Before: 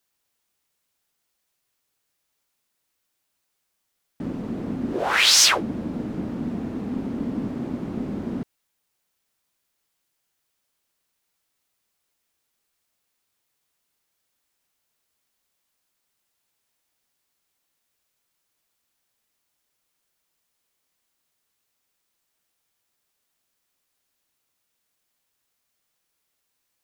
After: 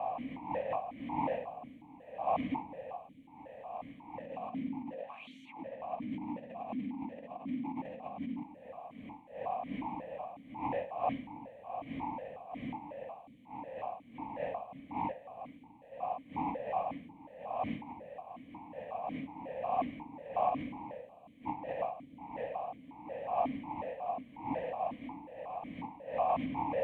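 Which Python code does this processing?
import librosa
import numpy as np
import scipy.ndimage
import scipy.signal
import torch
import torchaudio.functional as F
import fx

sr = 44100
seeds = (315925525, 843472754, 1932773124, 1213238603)

y = fx.dmg_wind(x, sr, seeds[0], corner_hz=510.0, level_db=-42.0)
y = fx.peak_eq(y, sr, hz=950.0, db=6.5, octaves=0.68)
y = fx.over_compress(y, sr, threshold_db=-37.0, ratio=-1.0)
y = fx.fixed_phaser(y, sr, hz=1400.0, stages=6)
y = fx.echo_bbd(y, sr, ms=326, stages=1024, feedback_pct=49, wet_db=-13.5)
y = fx.vowel_held(y, sr, hz=5.5)
y = F.gain(torch.from_numpy(y), 14.0).numpy()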